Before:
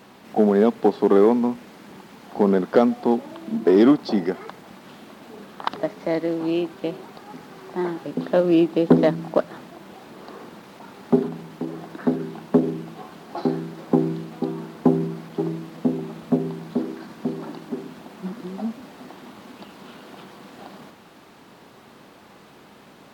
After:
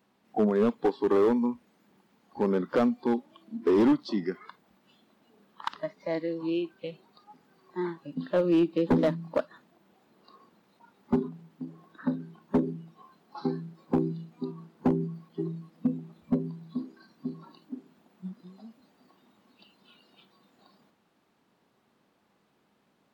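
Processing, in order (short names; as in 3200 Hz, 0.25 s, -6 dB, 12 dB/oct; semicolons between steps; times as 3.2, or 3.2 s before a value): spectral noise reduction 16 dB; bell 200 Hz +2.5 dB 0.62 oct; hard clip -11.5 dBFS, distortion -14 dB; gain -6 dB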